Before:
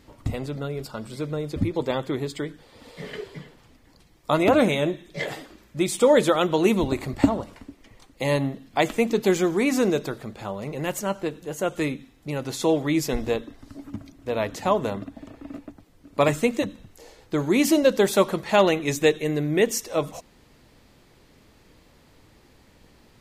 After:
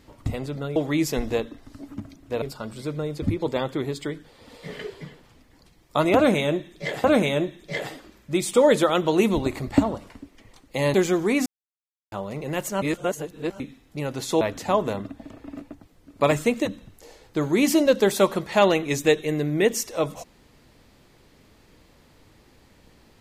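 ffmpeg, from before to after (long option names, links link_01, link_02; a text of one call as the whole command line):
ffmpeg -i in.wav -filter_complex "[0:a]asplit=10[link_01][link_02][link_03][link_04][link_05][link_06][link_07][link_08][link_09][link_10];[link_01]atrim=end=0.762[link_11];[link_02]atrim=start=12.718:end=14.382[link_12];[link_03]atrim=start=0.758:end=5.382[link_13];[link_04]atrim=start=4.498:end=8.402[link_14];[link_05]atrim=start=9.248:end=9.77,asetpts=PTS-STARTPTS,afade=type=out:start_time=0.518:duration=0.004:curve=hsin[link_15];[link_06]atrim=start=9.77:end=10.43,asetpts=PTS-STARTPTS,volume=0[link_16];[link_07]atrim=start=10.43:end=11.132,asetpts=PTS-STARTPTS,afade=type=in:duration=0.004:curve=hsin[link_17];[link_08]atrim=start=11.128:end=11.912,asetpts=PTS-STARTPTS,areverse[link_18];[link_09]atrim=start=11.908:end=12.722[link_19];[link_10]atrim=start=14.378[link_20];[link_11][link_12]acrossfade=duration=0.004:curve1=hsin:curve2=hsin[link_21];[link_21][link_13]acrossfade=duration=0.004:curve1=hsin:curve2=hsin[link_22];[link_22][link_14]acrossfade=duration=0.004:curve1=hsin:curve2=hsin[link_23];[link_15][link_16][link_17]concat=n=3:v=0:a=1[link_24];[link_23][link_24]acrossfade=duration=0.004:curve1=hsin:curve2=hsin[link_25];[link_25][link_18]acrossfade=duration=0.004:curve1=hsin:curve2=hsin[link_26];[link_26][link_19]acrossfade=duration=0.004:curve1=hsin:curve2=hsin[link_27];[link_27][link_20]acrossfade=duration=0.004:curve1=hsin:curve2=hsin" out.wav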